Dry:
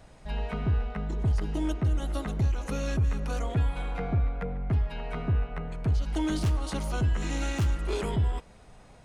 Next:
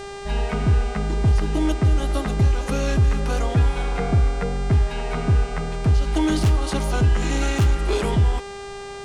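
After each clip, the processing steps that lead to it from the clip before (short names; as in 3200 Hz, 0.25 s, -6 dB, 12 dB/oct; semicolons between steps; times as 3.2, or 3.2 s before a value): buzz 400 Hz, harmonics 23, -43 dBFS -6 dB/oct; gain +8 dB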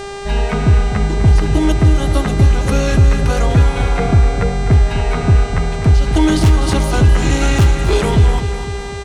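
feedback echo 0.252 s, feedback 57%, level -10.5 dB; gain +7 dB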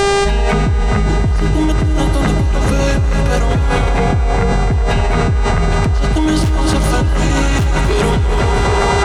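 narrowing echo 0.396 s, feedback 81%, band-pass 910 Hz, level -3.5 dB; fast leveller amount 100%; gain -6.5 dB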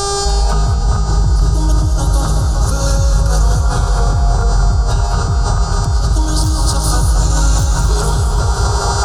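EQ curve 130 Hz 0 dB, 210 Hz -13 dB, 1400 Hz 0 dB, 2000 Hz -28 dB, 4700 Hz +5 dB; non-linear reverb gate 0.24 s rising, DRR 3.5 dB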